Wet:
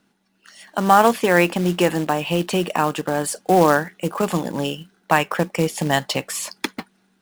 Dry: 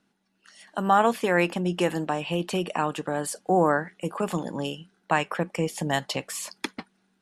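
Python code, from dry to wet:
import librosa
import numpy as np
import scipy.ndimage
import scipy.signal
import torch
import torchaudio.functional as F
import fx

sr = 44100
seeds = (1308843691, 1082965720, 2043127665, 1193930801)

y = fx.quant_float(x, sr, bits=2)
y = y * librosa.db_to_amplitude(6.5)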